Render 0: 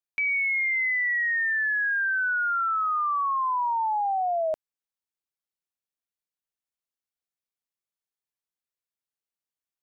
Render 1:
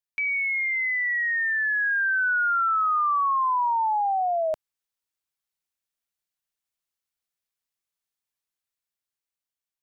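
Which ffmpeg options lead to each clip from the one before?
-af "equalizer=f=340:t=o:w=2.8:g=-5.5,dynaudnorm=f=790:g=5:m=1.78"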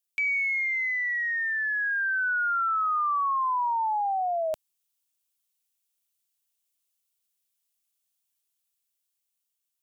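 -af "aexciter=amount=1.8:drive=7.8:freq=2600,volume=0.708"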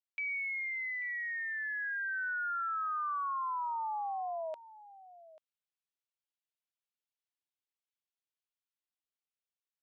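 -af "highpass=530,lowpass=3300,aecho=1:1:839:0.126,volume=0.355"

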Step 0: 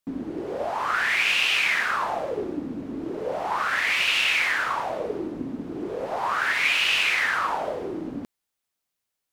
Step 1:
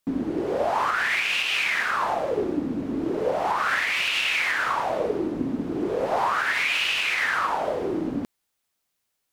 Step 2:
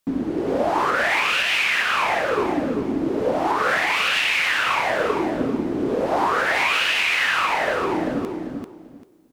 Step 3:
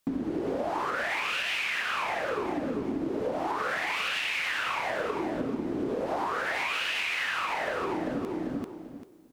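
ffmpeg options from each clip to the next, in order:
-af "alimiter=limit=0.106:level=0:latency=1:release=399,volume=1.78"
-af "aecho=1:1:392|784|1176:0.562|0.124|0.0272,volume=1.33"
-af "acompressor=threshold=0.0398:ratio=6"

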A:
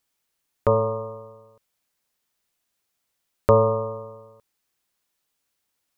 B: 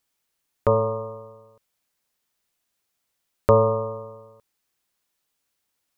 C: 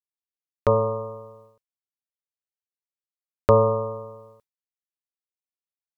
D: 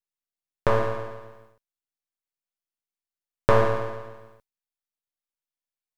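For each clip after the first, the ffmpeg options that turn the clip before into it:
-af anull
-af "agate=range=0.0224:threshold=0.00398:ratio=3:detection=peak"
-af "aeval=exprs='max(val(0),0)':c=same,volume=1.26"

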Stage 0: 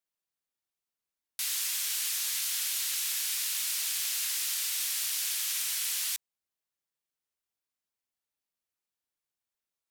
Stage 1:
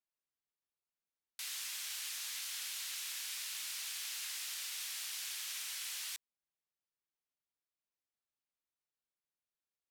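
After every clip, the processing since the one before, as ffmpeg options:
-af "highshelf=f=7000:g=-9,volume=0.501"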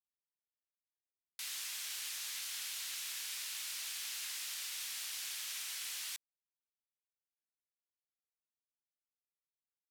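-af "acrusher=bits=9:mix=0:aa=0.000001"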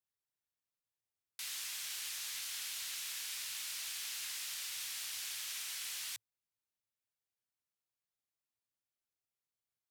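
-af "equalizer=f=110:w=3.9:g=13"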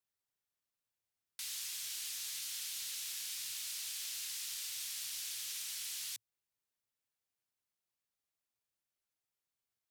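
-filter_complex "[0:a]acrossover=split=250|3000[s0][s1][s2];[s1]acompressor=threshold=0.00126:ratio=6[s3];[s0][s3][s2]amix=inputs=3:normalize=0,volume=1.12"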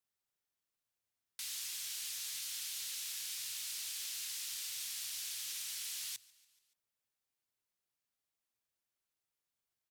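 -filter_complex "[0:a]asplit=5[s0][s1][s2][s3][s4];[s1]adelay=143,afreqshift=-31,volume=0.0668[s5];[s2]adelay=286,afreqshift=-62,volume=0.0407[s6];[s3]adelay=429,afreqshift=-93,volume=0.0248[s7];[s4]adelay=572,afreqshift=-124,volume=0.0151[s8];[s0][s5][s6][s7][s8]amix=inputs=5:normalize=0"

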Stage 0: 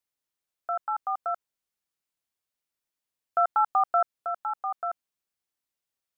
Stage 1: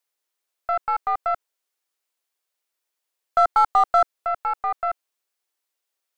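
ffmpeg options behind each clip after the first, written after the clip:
-af "highpass=f=340:w=0.5412,highpass=f=340:w=1.3066,acontrast=57,aeval=exprs='0.355*(cos(1*acos(clip(val(0)/0.355,-1,1)))-cos(1*PI/2))+0.0158*(cos(4*acos(clip(val(0)/0.355,-1,1)))-cos(4*PI/2))+0.00501*(cos(8*acos(clip(val(0)/0.355,-1,1)))-cos(8*PI/2))':c=same"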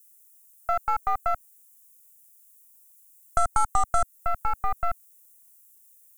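-af "asubboost=boost=10:cutoff=170,acompressor=threshold=0.1:ratio=2.5,aexciter=amount=15.2:drive=5.6:freq=6500"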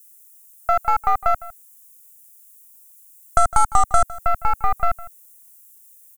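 -filter_complex "[0:a]asplit=2[s0][s1];[s1]adelay=157.4,volume=0.126,highshelf=f=4000:g=-3.54[s2];[s0][s2]amix=inputs=2:normalize=0,volume=2.24"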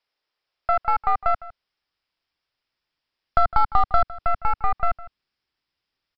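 -af "aresample=11025,aresample=44100,volume=0.75"

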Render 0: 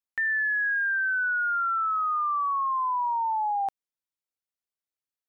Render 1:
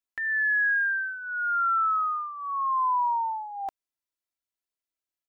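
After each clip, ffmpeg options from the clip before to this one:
-af "aecho=1:1:3:0.69,volume=0.794"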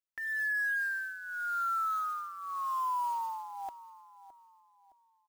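-filter_complex "[0:a]asplit=2[s0][s1];[s1]adelay=615,lowpass=f=1100:p=1,volume=0.2,asplit=2[s2][s3];[s3]adelay=615,lowpass=f=1100:p=1,volume=0.44,asplit=2[s4][s5];[s5]adelay=615,lowpass=f=1100:p=1,volume=0.44,asplit=2[s6][s7];[s7]adelay=615,lowpass=f=1100:p=1,volume=0.44[s8];[s0][s2][s4][s6][s8]amix=inputs=5:normalize=0,acrusher=bits=5:mode=log:mix=0:aa=0.000001,volume=0.422"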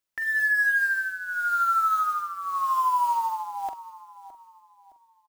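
-filter_complex "[0:a]asplit=2[s0][s1];[s1]adelay=44,volume=0.316[s2];[s0][s2]amix=inputs=2:normalize=0,volume=2.66"

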